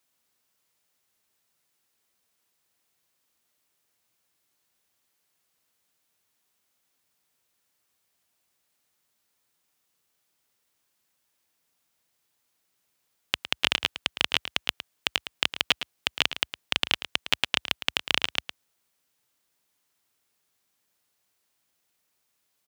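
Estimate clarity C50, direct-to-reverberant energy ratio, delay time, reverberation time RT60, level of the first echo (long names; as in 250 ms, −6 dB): no reverb audible, no reverb audible, 110 ms, no reverb audible, −12.0 dB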